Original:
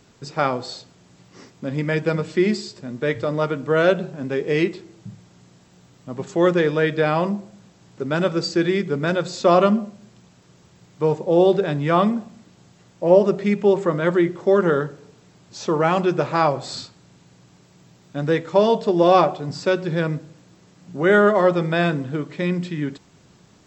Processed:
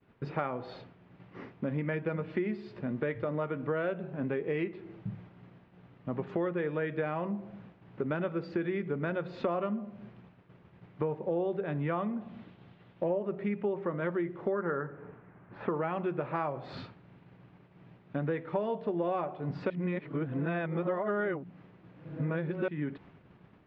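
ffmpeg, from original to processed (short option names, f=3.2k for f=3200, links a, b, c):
-filter_complex "[0:a]asettb=1/sr,asplit=3[a][b][c];[a]atrim=end=12.214[d];[b]atrim=start=12.21:end=13.08,asetpts=PTS-STARTPTS,afade=t=in:d=0.004:c=qsin,afade=t=out:st=0.866:d=0.004:c=qsin,equalizer=f=3.6k:t=o:w=0.8:g=7.5[e];[c]atrim=start=13.076[f];[d][e]acrossfade=d=0.004:c1=hsin:c2=qsin[g];[g][f]acrossfade=d=0.004:c1=qsin:c2=hsin,asettb=1/sr,asplit=3[h][i][j];[h]atrim=end=14.524[k];[i]atrim=start=14.52:end=15.71,asetpts=PTS-STARTPTS,afade=t=in:d=0.004:c=qsin,afade=t=out:st=1.186:d=0.004:c=qsin,lowpass=f=1.6k:t=q:w=1.7[l];[j]atrim=start=15.706[m];[k][l]acrossfade=d=0.004:c1=hsin:c2=qsin[n];[n][m]acrossfade=d=0.004:c1=qsin:c2=hsin,asplit=3[o][p][q];[o]atrim=end=19.702[r];[p]atrim=start=19.698:end=22.682,asetpts=PTS-STARTPTS,areverse[s];[q]atrim=start=22.678[t];[r][s]acrossfade=d=0.004:c1=hsin:c2=hsin[u];[u][t]acrossfade=d=0.004:c1=hsin:c2=hsin,lowpass=f=2.6k:w=0.5412,lowpass=f=2.6k:w=1.3066,agate=range=-33dB:threshold=-47dB:ratio=3:detection=peak,acompressor=threshold=-30dB:ratio=6"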